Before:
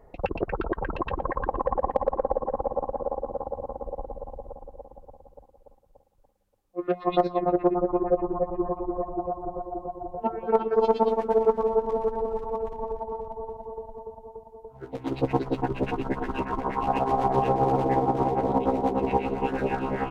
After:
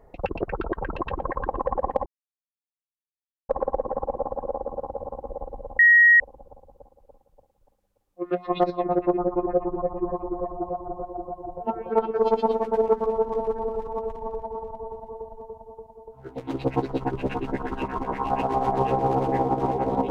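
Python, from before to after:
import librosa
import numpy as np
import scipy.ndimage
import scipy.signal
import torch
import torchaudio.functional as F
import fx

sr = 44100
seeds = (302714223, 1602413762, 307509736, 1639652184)

y = fx.edit(x, sr, fx.insert_silence(at_s=2.06, length_s=1.43),
    fx.bleep(start_s=4.36, length_s=0.41, hz=1890.0, db=-11.0), tone=tone)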